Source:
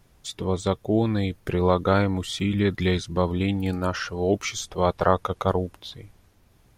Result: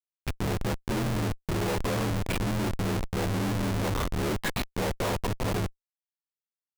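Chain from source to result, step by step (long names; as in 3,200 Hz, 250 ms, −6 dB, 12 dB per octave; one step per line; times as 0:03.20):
partials spread apart or drawn together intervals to 86%
comparator with hysteresis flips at −28.5 dBFS
level −1.5 dB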